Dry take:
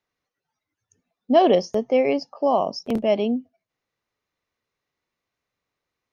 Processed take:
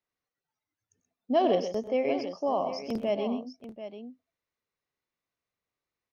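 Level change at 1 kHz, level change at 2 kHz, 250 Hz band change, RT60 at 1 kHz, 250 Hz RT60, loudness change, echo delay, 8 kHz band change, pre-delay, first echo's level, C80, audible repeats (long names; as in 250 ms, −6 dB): −7.5 dB, −7.5 dB, −7.5 dB, no reverb audible, no reverb audible, −7.5 dB, 94 ms, can't be measured, no reverb audible, −16.0 dB, no reverb audible, 3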